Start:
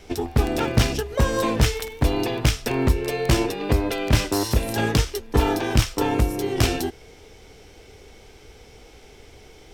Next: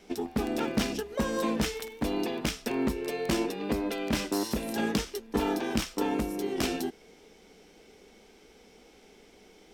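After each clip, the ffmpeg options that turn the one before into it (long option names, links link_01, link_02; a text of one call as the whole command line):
ffmpeg -i in.wav -af "lowshelf=frequency=150:width_type=q:width=3:gain=-9,volume=-8dB" out.wav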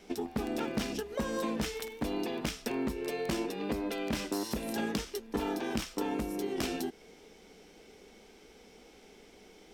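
ffmpeg -i in.wav -af "acompressor=threshold=-33dB:ratio=2" out.wav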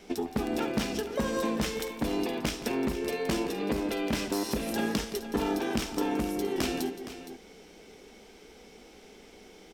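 ffmpeg -i in.wav -af "aecho=1:1:70|170|466:0.112|0.2|0.237,volume=3.5dB" out.wav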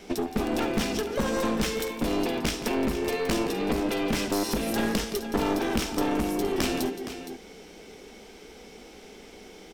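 ffmpeg -i in.wav -af "aeval=exprs='clip(val(0),-1,0.0251)':channel_layout=same,volume=5dB" out.wav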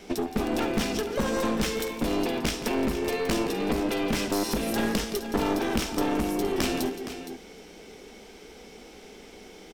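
ffmpeg -i in.wav -af "aecho=1:1:308:0.075" out.wav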